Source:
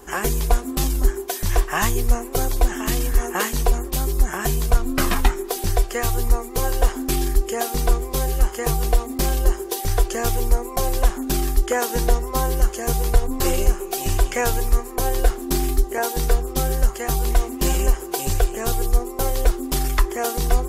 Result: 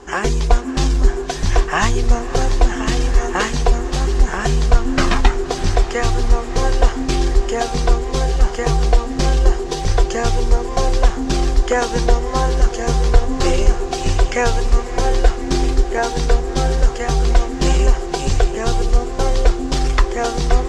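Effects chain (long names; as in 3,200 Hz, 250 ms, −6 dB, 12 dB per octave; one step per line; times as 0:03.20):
low-pass filter 6,500 Hz 24 dB per octave
feedback delay with all-pass diffusion 621 ms, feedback 69%, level −13 dB
level +4.5 dB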